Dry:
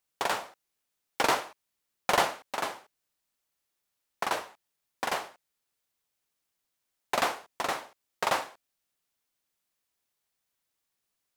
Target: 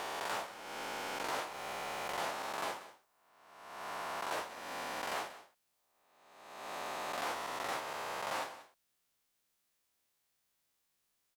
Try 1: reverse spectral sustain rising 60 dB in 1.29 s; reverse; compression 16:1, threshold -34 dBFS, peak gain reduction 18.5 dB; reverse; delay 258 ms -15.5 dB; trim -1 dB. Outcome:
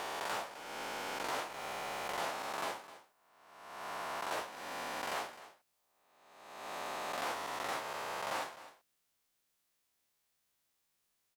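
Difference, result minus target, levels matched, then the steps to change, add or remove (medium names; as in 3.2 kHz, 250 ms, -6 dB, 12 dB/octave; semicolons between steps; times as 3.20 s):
echo 73 ms late
change: delay 185 ms -15.5 dB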